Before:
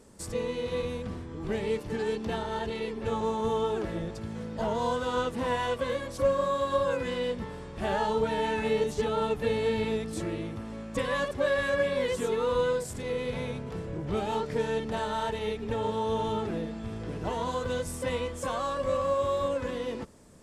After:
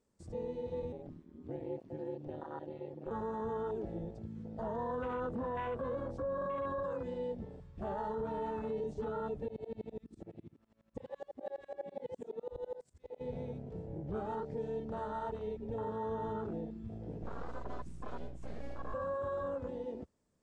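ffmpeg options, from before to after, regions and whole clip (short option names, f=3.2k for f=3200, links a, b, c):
-filter_complex "[0:a]asettb=1/sr,asplit=3[a][b][c];[a]atrim=end=0.924[d];[b]atrim=start=0.92:end=3.11,asetpts=PTS-STARTPTS,afade=t=in:d=0.004:c=qsin,afade=t=out:st=2.186:d=0.004:c=qsin,highpass=120,acrossover=split=3400[e][f];[f]acompressor=threshold=-56dB:ratio=4:attack=1:release=60[g];[e][g]amix=inputs=2:normalize=0,aeval=exprs='val(0)*sin(2*PI*76*n/s)':c=same[h];[c]atrim=start=3.106[i];[d][h]acrossfade=d=0.004:c1=hsin:c2=qsin[j];[j][i]acrossfade=d=0.004:c1=qsin:c2=hsin,asettb=1/sr,asplit=3[k][l][m];[k]atrim=end=4.764[n];[l]atrim=start=4.76:end=6.83,asetpts=PTS-STARTPTS,afade=t=in:d=0.004:c=qsin,afade=t=out:st=2.066:d=0.004:c=qsin,highshelf=f=2.6k:g=-9.5,acontrast=46[o];[m]atrim=start=6.826[p];[n][o]acrossfade=d=0.004:c1=hsin:c2=qsin[q];[q][p]acrossfade=d=0.004:c1=qsin:c2=hsin,asettb=1/sr,asplit=3[r][s][t];[r]atrim=end=9.484[u];[s]atrim=start=9.48:end=13.21,asetpts=PTS-STARTPTS,afade=t=in:d=0.004:c=qsin,afade=t=out:st=3.726:d=0.004:c=qsin,aeval=exprs='sgn(val(0))*max(abs(val(0))-0.00282,0)':c=same,aeval=exprs='val(0)*pow(10,-23*if(lt(mod(-12*n/s,1),2*abs(-12)/1000),1-mod(-12*n/s,1)/(2*abs(-12)/1000),(mod(-12*n/s,1)-2*abs(-12)/1000)/(1-2*abs(-12)/1000))/20)':c=same[v];[t]atrim=start=13.206[w];[u][v]acrossfade=d=0.004:c1=hsin:c2=qsin[x];[x][w]acrossfade=d=0.004:c1=qsin:c2=hsin,asettb=1/sr,asplit=3[y][z][aa];[y]atrim=end=17.224[ab];[z]atrim=start=17.22:end=18.94,asetpts=PTS-STARTPTS,afade=t=in:d=0.004:c=qsin,afade=t=out:st=1.716:d=0.004:c=qsin,aeval=exprs='abs(val(0))':c=same,aeval=exprs='val(0)+0.00891*(sin(2*PI*60*n/s)+sin(2*PI*2*60*n/s)/2+sin(2*PI*3*60*n/s)/3+sin(2*PI*4*60*n/s)/4+sin(2*PI*5*60*n/s)/5)':c=same[ac];[aa]atrim=start=18.936[ad];[ab][ac]acrossfade=d=0.004:c1=hsin:c2=qsin[ae];[ae][ad]acrossfade=d=0.004:c1=qsin:c2=hsin,afwtdn=0.0282,lowpass=f=8.6k:w=0.5412,lowpass=f=8.6k:w=1.3066,alimiter=limit=-23.5dB:level=0:latency=1:release=20,volume=-7dB"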